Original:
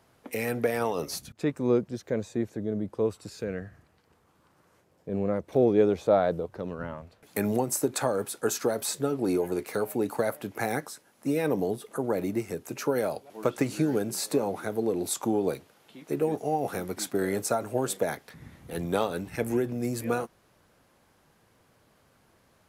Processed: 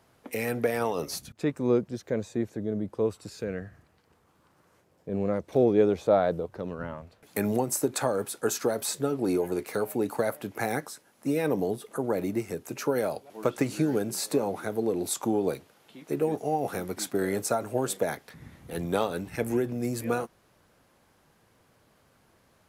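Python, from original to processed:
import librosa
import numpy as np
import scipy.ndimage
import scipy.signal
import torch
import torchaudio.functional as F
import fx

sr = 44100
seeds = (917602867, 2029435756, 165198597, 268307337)

y = fx.dynamic_eq(x, sr, hz=5600.0, q=0.72, threshold_db=-54.0, ratio=4.0, max_db=5, at=(5.18, 5.63))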